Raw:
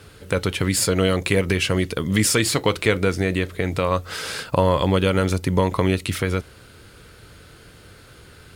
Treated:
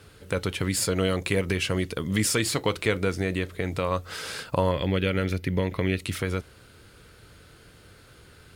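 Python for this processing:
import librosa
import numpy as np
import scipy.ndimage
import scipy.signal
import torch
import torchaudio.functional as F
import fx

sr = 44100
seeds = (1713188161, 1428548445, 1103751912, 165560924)

y = fx.graphic_eq(x, sr, hz=(1000, 2000, 8000), db=(-10, 7, -11), at=(4.71, 5.99))
y = y * 10.0 ** (-5.5 / 20.0)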